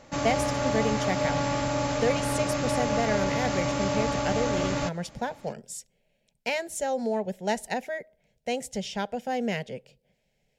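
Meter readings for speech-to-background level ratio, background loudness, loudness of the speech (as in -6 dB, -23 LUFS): -3.5 dB, -28.0 LUFS, -31.5 LUFS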